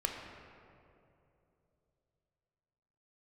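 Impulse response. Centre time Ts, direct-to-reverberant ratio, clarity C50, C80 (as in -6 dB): 72 ms, 1.0 dB, 3.5 dB, 4.5 dB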